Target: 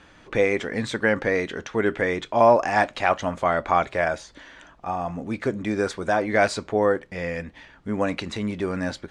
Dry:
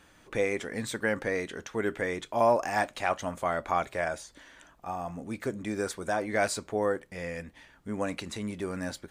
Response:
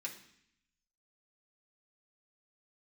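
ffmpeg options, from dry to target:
-af "lowpass=4900,volume=7.5dB"

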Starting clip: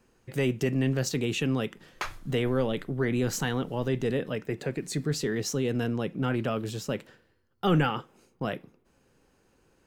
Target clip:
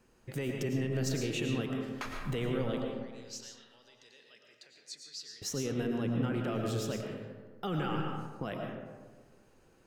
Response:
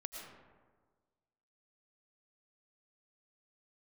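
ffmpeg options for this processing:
-filter_complex "[0:a]alimiter=level_in=1dB:limit=-24dB:level=0:latency=1:release=185,volume=-1dB,asettb=1/sr,asplit=3[link_01][link_02][link_03];[link_01]atrim=end=2.814[link_04];[link_02]atrim=start=2.81:end=5.42,asetpts=PTS-STARTPTS,afade=type=in:duration=0.004:curve=qsin,afade=type=out:start_time=2.606:duration=0.004:curve=qsin,bandpass=frequency=4900:width_type=q:width=2.9:csg=0[link_05];[link_03]atrim=start=5.416[link_06];[link_04][link_05]acrossfade=duration=0.004:curve1=hsin:curve2=qsin[link_07];[link_07][link_06]acrossfade=duration=0.004:curve1=qsin:curve2=hsin[link_08];[1:a]atrim=start_sample=2205[link_09];[link_08][link_09]afir=irnorm=-1:irlink=0,volume=3dB"

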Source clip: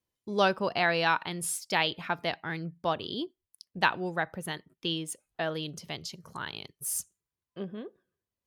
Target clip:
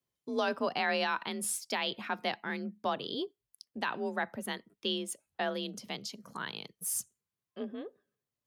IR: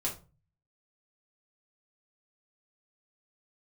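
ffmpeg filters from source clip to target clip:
-af "alimiter=limit=-19.5dB:level=0:latency=1:release=17,afreqshift=39,volume=-1.5dB"

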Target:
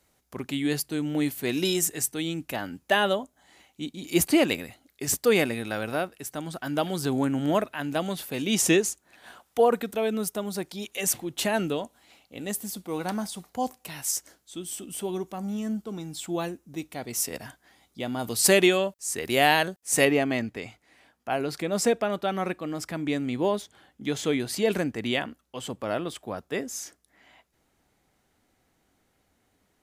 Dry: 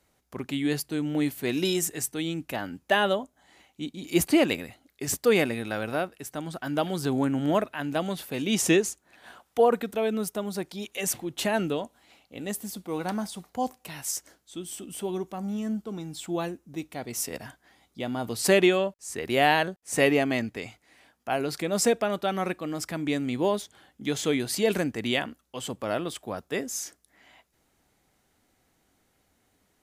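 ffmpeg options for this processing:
ffmpeg -i in.wav -af "asetnsamples=nb_out_samples=441:pad=0,asendcmd='18.19 highshelf g 9.5;20.05 highshelf g -3.5',highshelf=frequency=4300:gain=4" out.wav

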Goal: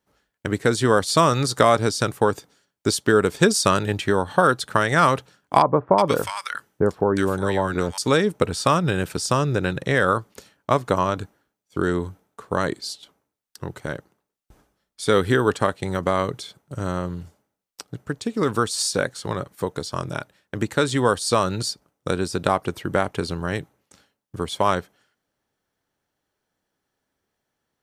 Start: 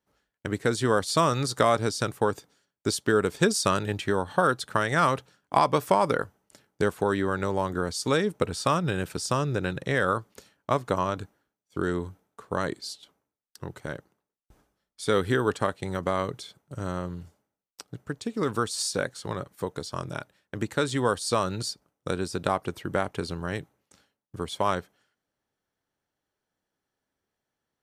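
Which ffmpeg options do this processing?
ffmpeg -i in.wav -filter_complex "[0:a]asettb=1/sr,asplit=3[link_01][link_02][link_03];[link_01]atrim=end=5.624[link_04];[link_02]atrim=start=5.62:end=7.98,asetpts=PTS-STARTPTS,afade=type=in:duration=0.004:curve=qsin,afade=type=out:start_time=2.356:duration=0.004:curve=qsin,acrossover=split=1300[link_05][link_06];[link_06]adelay=360[link_07];[link_05][link_07]amix=inputs=2:normalize=0,atrim=end_sample=104076[link_08];[link_03]atrim=start=7.976[link_09];[link_04][link_08]acrossfade=duration=0.004:curve1=hsin:curve2=qsin[link_10];[link_10][link_09]acrossfade=duration=0.004:curve1=qsin:curve2=hsin,volume=5.5dB" out.wav

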